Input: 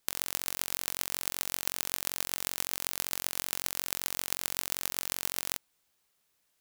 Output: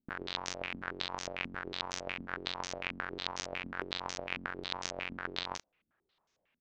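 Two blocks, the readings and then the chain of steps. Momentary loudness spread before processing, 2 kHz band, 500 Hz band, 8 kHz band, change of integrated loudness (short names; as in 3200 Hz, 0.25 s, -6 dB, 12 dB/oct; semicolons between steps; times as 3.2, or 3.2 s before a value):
0 LU, +2.0 dB, +4.0 dB, -13.5 dB, -6.5 dB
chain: air absorption 170 m; doubler 34 ms -6.5 dB; stepped low-pass 11 Hz 240–6300 Hz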